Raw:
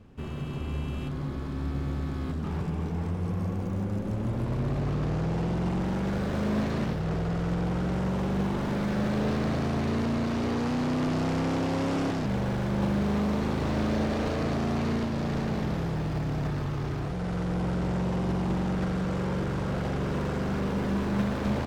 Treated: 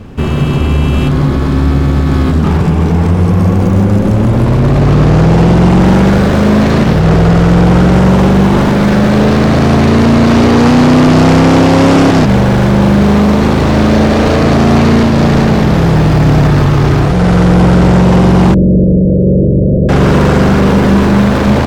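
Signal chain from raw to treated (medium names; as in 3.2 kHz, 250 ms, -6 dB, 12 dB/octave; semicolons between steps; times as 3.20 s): 18.54–19.89 s: steep low-pass 610 Hz 96 dB/octave; loudness maximiser +24 dB; trim -1 dB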